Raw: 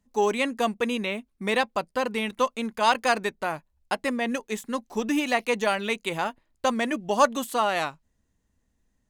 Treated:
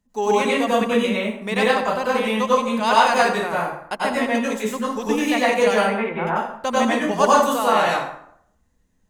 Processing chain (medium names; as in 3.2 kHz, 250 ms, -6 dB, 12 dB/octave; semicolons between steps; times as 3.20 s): 5.76–6.27 s: low-pass 2.1 kHz 24 dB/octave; plate-style reverb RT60 0.68 s, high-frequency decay 0.65×, pre-delay 80 ms, DRR -6.5 dB; trim -1 dB